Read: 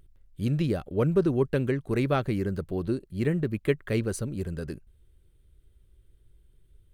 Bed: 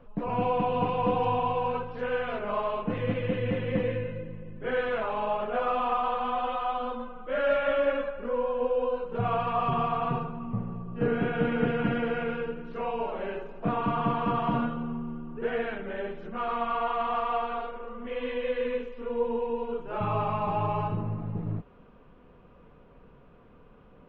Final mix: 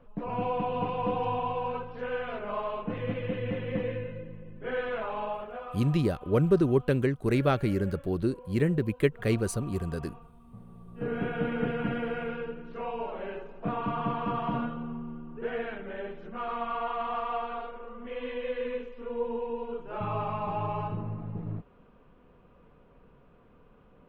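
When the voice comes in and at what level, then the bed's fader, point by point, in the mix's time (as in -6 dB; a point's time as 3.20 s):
5.35 s, +0.5 dB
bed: 5.23 s -3.5 dB
5.99 s -20.5 dB
10.41 s -20.5 dB
11.20 s -3.5 dB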